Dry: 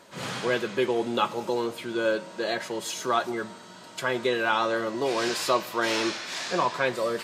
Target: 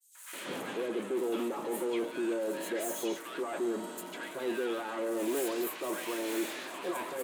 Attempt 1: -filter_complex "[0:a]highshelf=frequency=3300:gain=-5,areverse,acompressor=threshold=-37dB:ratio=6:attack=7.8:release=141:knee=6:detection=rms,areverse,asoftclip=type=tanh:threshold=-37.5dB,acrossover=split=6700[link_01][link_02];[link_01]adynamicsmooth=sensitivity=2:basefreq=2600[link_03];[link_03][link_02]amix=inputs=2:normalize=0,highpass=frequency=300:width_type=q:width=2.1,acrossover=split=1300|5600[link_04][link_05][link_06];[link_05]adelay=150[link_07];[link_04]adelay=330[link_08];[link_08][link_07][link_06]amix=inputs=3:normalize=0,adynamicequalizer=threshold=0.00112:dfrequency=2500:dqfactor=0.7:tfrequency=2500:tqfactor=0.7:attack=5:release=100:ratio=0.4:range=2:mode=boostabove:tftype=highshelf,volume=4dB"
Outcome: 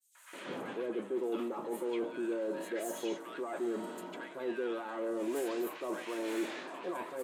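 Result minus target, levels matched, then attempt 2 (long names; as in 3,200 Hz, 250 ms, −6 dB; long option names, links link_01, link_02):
downward compressor: peak gain reduction +8 dB; 8,000 Hz band −5.5 dB
-filter_complex "[0:a]highshelf=frequency=3300:gain=3.5,areverse,acompressor=threshold=-26.5dB:ratio=6:attack=7.8:release=141:knee=6:detection=rms,areverse,asoftclip=type=tanh:threshold=-37.5dB,acrossover=split=6700[link_01][link_02];[link_01]adynamicsmooth=sensitivity=2:basefreq=2600[link_03];[link_03][link_02]amix=inputs=2:normalize=0,highpass=frequency=300:width_type=q:width=2.1,acrossover=split=1300|5600[link_04][link_05][link_06];[link_05]adelay=150[link_07];[link_04]adelay=330[link_08];[link_08][link_07][link_06]amix=inputs=3:normalize=0,adynamicequalizer=threshold=0.00112:dfrequency=2500:dqfactor=0.7:tfrequency=2500:tqfactor=0.7:attack=5:release=100:ratio=0.4:range=2:mode=boostabove:tftype=highshelf,volume=4dB"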